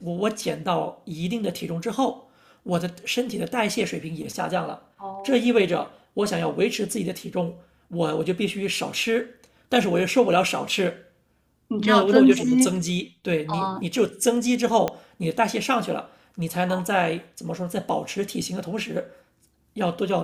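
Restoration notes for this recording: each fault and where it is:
14.88 s: pop -11 dBFS

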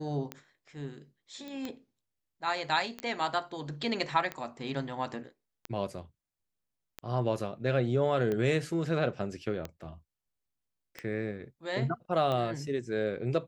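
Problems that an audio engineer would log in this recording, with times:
tick 45 rpm -21 dBFS
1.48 s: pop -29 dBFS
3.00 s: pop -22 dBFS

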